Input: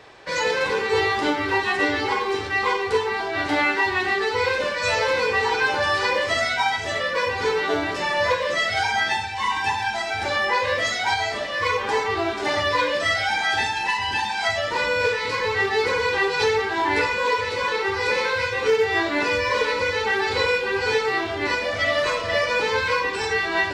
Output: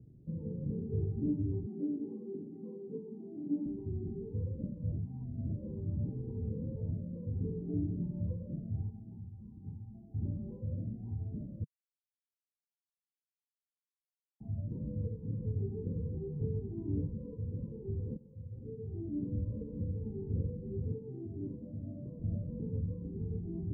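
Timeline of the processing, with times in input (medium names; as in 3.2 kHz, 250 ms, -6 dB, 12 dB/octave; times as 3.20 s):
1.66–3.66 s: steep high-pass 190 Hz
4.92–6.91 s: reverse
8.90–10.14 s: four-pole ladder low-pass 900 Hz, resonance 40%
11.64–14.40 s: mute
18.17–19.50 s: fade in linear, from -16.5 dB
20.93–22.20 s: high-pass 230 Hz 6 dB/octave
whole clip: inverse Chebyshev low-pass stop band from 1.4 kHz, stop band 80 dB; peaking EQ 150 Hz +8.5 dB 1.2 oct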